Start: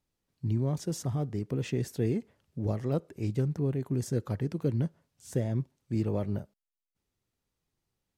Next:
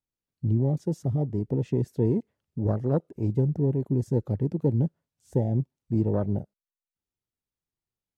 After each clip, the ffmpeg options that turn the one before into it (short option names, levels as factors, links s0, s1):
-af "afwtdn=0.0158,volume=1.78"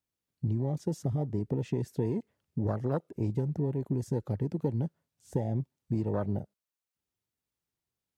-filter_complex "[0:a]highpass=52,acrossover=split=820[s0][s1];[s0]acompressor=threshold=0.0316:ratio=6[s2];[s2][s1]amix=inputs=2:normalize=0,volume=1.33"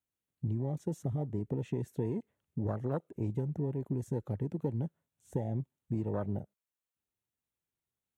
-af "equalizer=f=4900:w=3.9:g=-13,volume=0.668"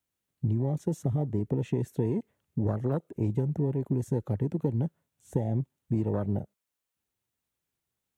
-filter_complex "[0:a]acrossover=split=420|3000[s0][s1][s2];[s1]acompressor=threshold=0.01:ratio=6[s3];[s0][s3][s2]amix=inputs=3:normalize=0,volume=2"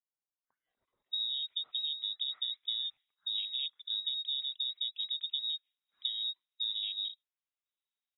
-filter_complex "[0:a]acrossover=split=2900[s0][s1];[s0]adelay=690[s2];[s2][s1]amix=inputs=2:normalize=0,lowpass=f=3300:t=q:w=0.5098,lowpass=f=3300:t=q:w=0.6013,lowpass=f=3300:t=q:w=0.9,lowpass=f=3300:t=q:w=2.563,afreqshift=-3900,volume=0.398"